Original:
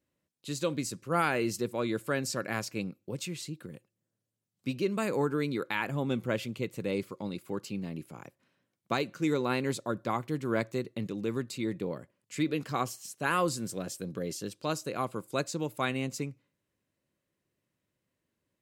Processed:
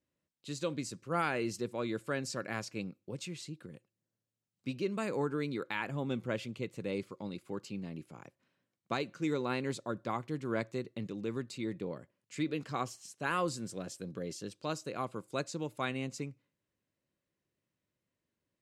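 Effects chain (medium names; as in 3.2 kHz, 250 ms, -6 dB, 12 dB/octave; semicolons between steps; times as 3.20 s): low-pass 8.5 kHz 12 dB/octave; trim -4.5 dB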